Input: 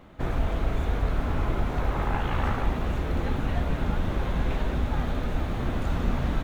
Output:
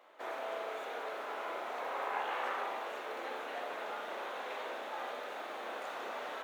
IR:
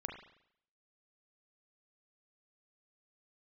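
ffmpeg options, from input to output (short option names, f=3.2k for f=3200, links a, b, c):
-filter_complex "[0:a]highpass=f=470:w=0.5412,highpass=f=470:w=1.3066[a];[1:a]atrim=start_sample=2205,asetrate=48510,aresample=44100[b];[a][b]afir=irnorm=-1:irlink=0,volume=-2.5dB"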